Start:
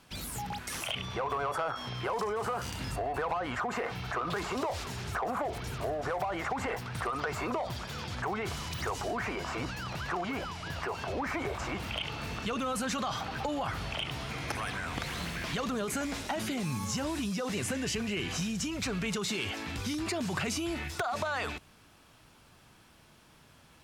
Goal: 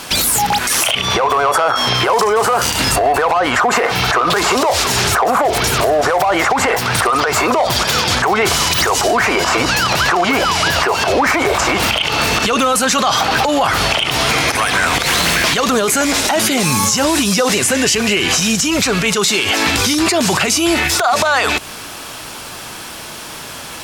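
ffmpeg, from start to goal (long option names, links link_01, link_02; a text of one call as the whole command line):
ffmpeg -i in.wav -af "bass=frequency=250:gain=-10,treble=frequency=4000:gain=5,acompressor=threshold=-40dB:ratio=6,alimiter=level_in=33.5dB:limit=-1dB:release=50:level=0:latency=1,volume=-4dB" out.wav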